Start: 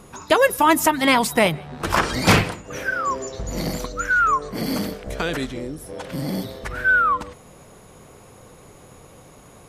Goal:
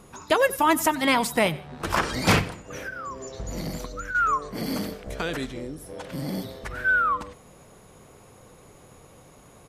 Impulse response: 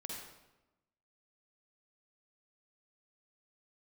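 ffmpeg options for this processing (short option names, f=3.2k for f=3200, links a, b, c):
-filter_complex "[0:a]asettb=1/sr,asplit=3[a][b][c];[a]atrim=end=2.394[d];[b]atrim=start=2.39:end=4.15,asetpts=PTS-STARTPTS,afade=t=in:d=0.004:c=qsin,afade=t=out:st=1.756:d=0.004:c=qsin,acrossover=split=220[e][f];[f]acompressor=threshold=-28dB:ratio=10[g];[e][g]amix=inputs=2:normalize=0[h];[c]atrim=start=4.146[i];[d][h]acrossfade=d=0.004:c1=hsin:c2=qsin[j];[j][i]acrossfade=d=0.004:c1=qsin:c2=hsin,aecho=1:1:92:0.1,volume=-4.5dB"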